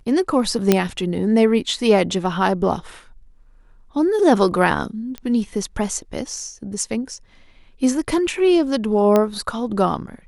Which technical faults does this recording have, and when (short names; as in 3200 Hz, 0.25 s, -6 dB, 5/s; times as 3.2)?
0.72 pop 0 dBFS
5.18 pop -16 dBFS
9.16 pop -5 dBFS